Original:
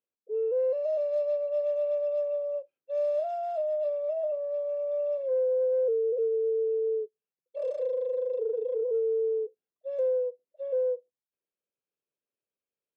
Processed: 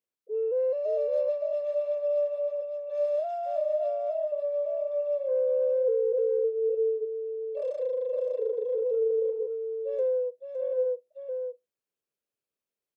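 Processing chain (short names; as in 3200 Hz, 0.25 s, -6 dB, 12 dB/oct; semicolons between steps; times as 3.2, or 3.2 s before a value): echo 0.563 s -6 dB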